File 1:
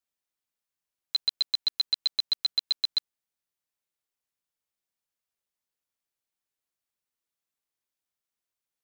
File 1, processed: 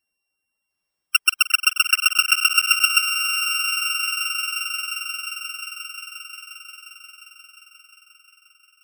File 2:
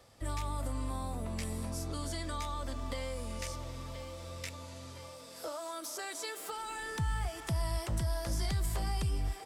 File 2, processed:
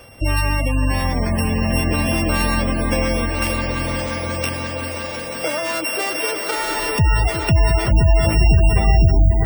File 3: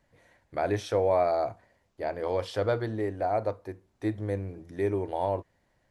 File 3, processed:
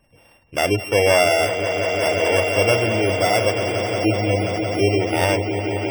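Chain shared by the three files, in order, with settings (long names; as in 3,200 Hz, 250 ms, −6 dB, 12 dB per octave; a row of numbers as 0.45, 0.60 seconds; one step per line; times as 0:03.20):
samples sorted by size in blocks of 16 samples
echo that builds up and dies away 177 ms, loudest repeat 5, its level −10.5 dB
gate on every frequency bin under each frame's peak −25 dB strong
loudness normalisation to −19 LKFS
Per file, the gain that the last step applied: +10.0, +18.0, +8.5 decibels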